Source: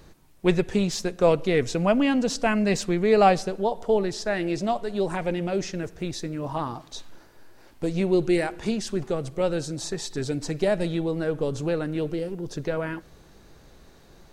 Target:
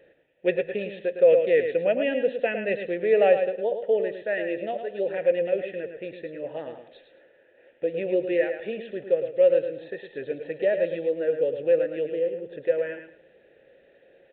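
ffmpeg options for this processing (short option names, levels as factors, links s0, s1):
-filter_complex "[0:a]asplit=3[s0][s1][s2];[s0]bandpass=f=530:t=q:w=8,volume=1[s3];[s1]bandpass=f=1840:t=q:w=8,volume=0.501[s4];[s2]bandpass=f=2480:t=q:w=8,volume=0.355[s5];[s3][s4][s5]amix=inputs=3:normalize=0,asplit=2[s6][s7];[s7]aecho=0:1:108|216|324:0.398|0.0876|0.0193[s8];[s6][s8]amix=inputs=2:normalize=0,aresample=8000,aresample=44100,alimiter=level_in=7.08:limit=0.891:release=50:level=0:latency=1,volume=0.398"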